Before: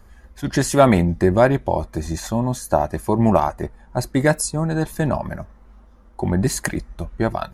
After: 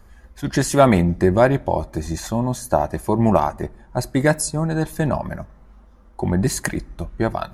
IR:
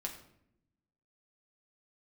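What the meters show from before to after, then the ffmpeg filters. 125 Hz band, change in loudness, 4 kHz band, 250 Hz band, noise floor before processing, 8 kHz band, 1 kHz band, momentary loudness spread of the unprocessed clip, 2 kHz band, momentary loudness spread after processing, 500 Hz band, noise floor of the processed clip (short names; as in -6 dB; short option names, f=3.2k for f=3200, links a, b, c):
0.0 dB, 0.0 dB, 0.0 dB, 0.0 dB, -48 dBFS, 0.0 dB, 0.0 dB, 12 LU, 0.0 dB, 12 LU, 0.0 dB, -48 dBFS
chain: -filter_complex "[0:a]asplit=2[a][b];[1:a]atrim=start_sample=2205[c];[b][c]afir=irnorm=-1:irlink=0,volume=-16.5dB[d];[a][d]amix=inputs=2:normalize=0,volume=-1dB"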